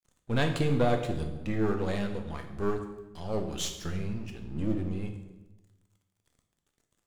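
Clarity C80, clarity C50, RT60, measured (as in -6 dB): 10.0 dB, 7.5 dB, 1.1 s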